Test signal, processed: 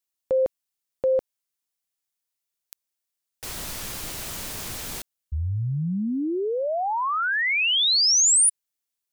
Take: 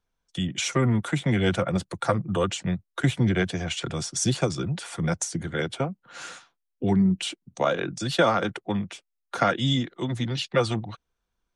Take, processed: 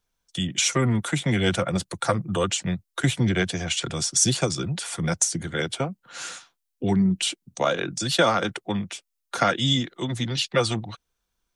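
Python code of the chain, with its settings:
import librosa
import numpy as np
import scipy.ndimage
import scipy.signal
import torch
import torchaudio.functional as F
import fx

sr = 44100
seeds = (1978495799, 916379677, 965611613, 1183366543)

y = fx.high_shelf(x, sr, hz=3300.0, db=9.5)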